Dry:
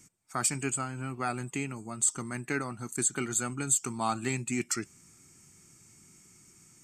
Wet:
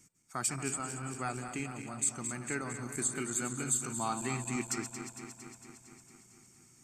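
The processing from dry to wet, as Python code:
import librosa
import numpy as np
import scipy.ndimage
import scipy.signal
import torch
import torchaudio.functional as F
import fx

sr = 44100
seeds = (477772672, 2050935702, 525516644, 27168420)

y = fx.reverse_delay_fb(x, sr, ms=114, feedback_pct=82, wet_db=-9.5)
y = y * librosa.db_to_amplitude(-5.0)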